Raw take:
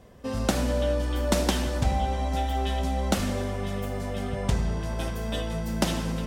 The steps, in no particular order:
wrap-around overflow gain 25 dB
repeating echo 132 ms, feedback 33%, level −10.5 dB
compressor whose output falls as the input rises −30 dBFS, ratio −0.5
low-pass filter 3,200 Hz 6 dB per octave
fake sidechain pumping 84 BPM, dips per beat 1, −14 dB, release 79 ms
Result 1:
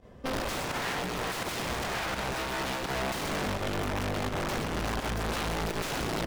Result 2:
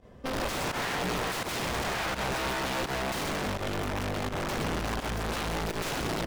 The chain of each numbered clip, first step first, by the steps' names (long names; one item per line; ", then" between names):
wrap-around overflow, then fake sidechain pumping, then repeating echo, then compressor whose output falls as the input rises, then low-pass filter
wrap-around overflow, then low-pass filter, then compressor whose output falls as the input rises, then repeating echo, then fake sidechain pumping